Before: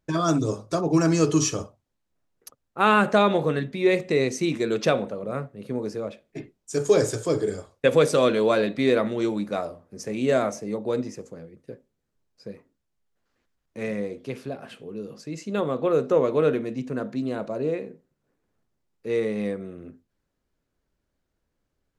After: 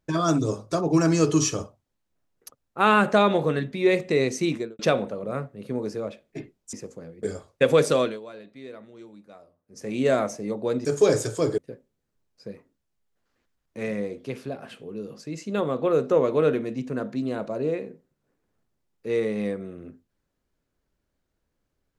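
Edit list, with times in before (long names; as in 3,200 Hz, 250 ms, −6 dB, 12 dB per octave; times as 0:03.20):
0:04.49–0:04.79: fade out and dull
0:06.73–0:07.46: swap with 0:11.08–0:11.58
0:08.15–0:10.17: duck −20.5 dB, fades 0.28 s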